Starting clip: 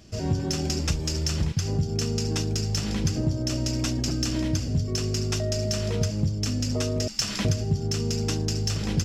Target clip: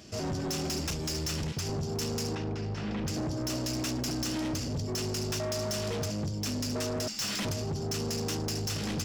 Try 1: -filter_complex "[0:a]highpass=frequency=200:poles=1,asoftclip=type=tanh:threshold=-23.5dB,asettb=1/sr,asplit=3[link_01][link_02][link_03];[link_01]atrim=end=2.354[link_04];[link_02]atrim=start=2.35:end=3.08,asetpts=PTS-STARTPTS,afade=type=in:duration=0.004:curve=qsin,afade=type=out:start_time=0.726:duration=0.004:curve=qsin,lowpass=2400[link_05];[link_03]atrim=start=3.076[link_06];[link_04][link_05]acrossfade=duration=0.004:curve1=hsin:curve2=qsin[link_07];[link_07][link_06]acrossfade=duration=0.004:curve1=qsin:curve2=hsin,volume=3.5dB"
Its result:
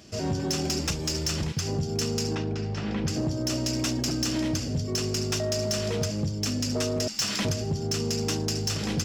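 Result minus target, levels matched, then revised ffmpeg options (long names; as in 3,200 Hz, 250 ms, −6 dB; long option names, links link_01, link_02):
soft clipping: distortion −8 dB
-filter_complex "[0:a]highpass=frequency=200:poles=1,asoftclip=type=tanh:threshold=-33dB,asettb=1/sr,asplit=3[link_01][link_02][link_03];[link_01]atrim=end=2.354[link_04];[link_02]atrim=start=2.35:end=3.08,asetpts=PTS-STARTPTS,afade=type=in:duration=0.004:curve=qsin,afade=type=out:start_time=0.726:duration=0.004:curve=qsin,lowpass=2400[link_05];[link_03]atrim=start=3.076[link_06];[link_04][link_05]acrossfade=duration=0.004:curve1=hsin:curve2=qsin[link_07];[link_07][link_06]acrossfade=duration=0.004:curve1=qsin:curve2=hsin,volume=3.5dB"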